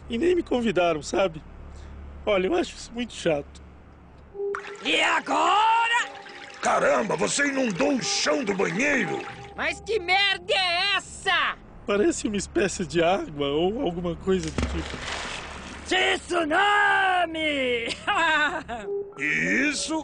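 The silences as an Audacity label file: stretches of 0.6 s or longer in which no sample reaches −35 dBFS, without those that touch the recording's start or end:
3.570000	4.350000	silence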